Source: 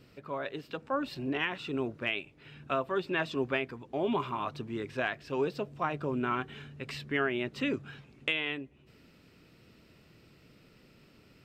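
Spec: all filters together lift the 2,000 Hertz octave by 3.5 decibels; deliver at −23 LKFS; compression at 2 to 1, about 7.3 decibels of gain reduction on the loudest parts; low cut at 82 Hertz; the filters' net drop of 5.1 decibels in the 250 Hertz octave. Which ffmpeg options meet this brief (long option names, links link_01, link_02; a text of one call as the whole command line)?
ffmpeg -i in.wav -af "highpass=82,equalizer=frequency=250:width_type=o:gain=-6.5,equalizer=frequency=2000:width_type=o:gain=4.5,acompressor=threshold=-37dB:ratio=2,volume=15.5dB" out.wav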